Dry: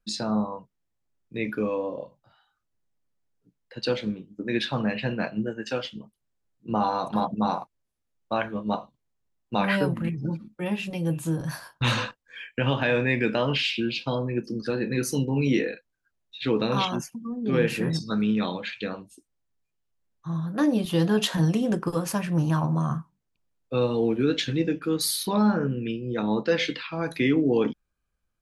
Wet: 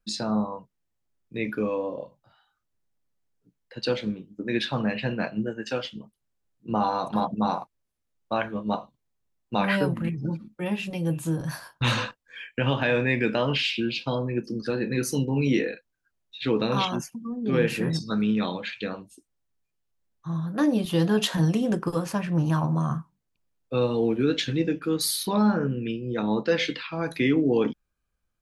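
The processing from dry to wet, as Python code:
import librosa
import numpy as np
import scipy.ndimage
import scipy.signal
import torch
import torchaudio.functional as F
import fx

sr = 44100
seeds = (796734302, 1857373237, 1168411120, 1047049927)

y = fx.high_shelf(x, sr, hz=6600.0, db=-11.0, at=(22.06, 22.46))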